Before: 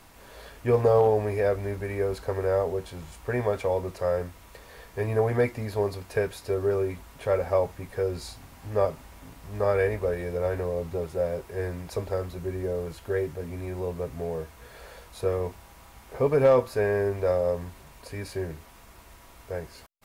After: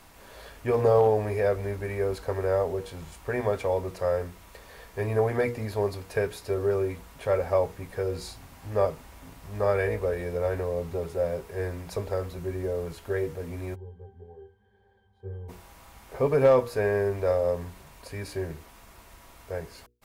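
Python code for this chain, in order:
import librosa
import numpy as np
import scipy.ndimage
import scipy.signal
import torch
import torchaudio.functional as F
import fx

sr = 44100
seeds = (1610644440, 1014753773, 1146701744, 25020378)

y = fx.hum_notches(x, sr, base_hz=60, count=8)
y = fx.octave_resonator(y, sr, note='G', decay_s=0.24, at=(13.74, 15.48), fade=0.02)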